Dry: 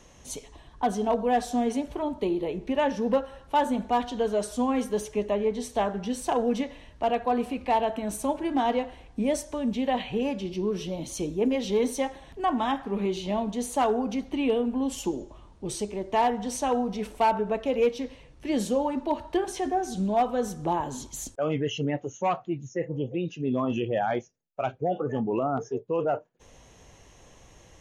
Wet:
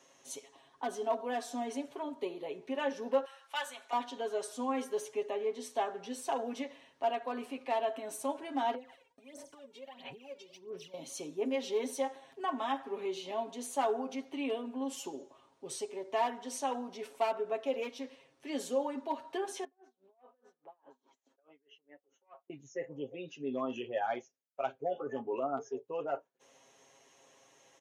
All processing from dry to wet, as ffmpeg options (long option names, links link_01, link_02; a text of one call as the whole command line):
ffmpeg -i in.wav -filter_complex "[0:a]asettb=1/sr,asplit=3[link_01][link_02][link_03];[link_01]atrim=end=3.254[link_04];[link_02]atrim=start=3.25:end=3.93,asetpts=PTS-STARTPTS,afade=type=in:duration=0.004:curve=qsin,afade=type=out:start_time=0.676:duration=0.004:curve=qsin,acontrast=36,highpass=1400[link_05];[link_03]atrim=start=3.926[link_06];[link_04][link_05]acrossfade=duration=0.004:curve1=hsin:curve2=qsin[link_07];[link_07][link_06]acrossfade=duration=0.004:curve1=qsin:curve2=hsin,asettb=1/sr,asplit=3[link_08][link_09][link_10];[link_08]atrim=end=8.744[link_11];[link_09]atrim=start=8.74:end=10.94,asetpts=PTS-STARTPTS,afade=type=in:duration=0.004:curve=qsin,afade=type=out:start_time=2.196:duration=0.004:curve=qsin,agate=range=-33dB:threshold=-41dB:ratio=3:release=100:detection=peak,acompressor=threshold=-41dB:ratio=8:attack=3.2:release=140:knee=1:detection=peak,aphaser=in_gain=1:out_gain=1:delay=2.2:decay=0.79:speed=1.5:type=sinusoidal[link_12];[link_10]atrim=start=10.936[link_13];[link_11][link_12]acrossfade=duration=0.004:curve1=hsin:curve2=qsin[link_14];[link_14][link_13]acrossfade=duration=0.004:curve1=qsin:curve2=hsin,asettb=1/sr,asplit=3[link_15][link_16][link_17];[link_15]atrim=end=19.644[link_18];[link_16]atrim=start=19.64:end=22.5,asetpts=PTS-STARTPTS,afade=type=in:duration=0.004:curve=qsin,afade=type=out:start_time=2.856:duration=0.004:curve=qsin,acompressor=threshold=-40dB:ratio=5:attack=3.2:release=140:knee=1:detection=peak,highpass=310,lowpass=2100,aeval=exprs='val(0)*pow(10,-29*(0.5-0.5*cos(2*PI*4.8*n/s))/20)':channel_layout=same[link_19];[link_17]atrim=start=22.496[link_20];[link_18][link_19]acrossfade=duration=0.004:curve1=hsin:curve2=qsin[link_21];[link_21][link_20]acrossfade=duration=0.004:curve1=qsin:curve2=hsin,highpass=350,aecho=1:1:7.4:0.75,volume=-8.5dB" out.wav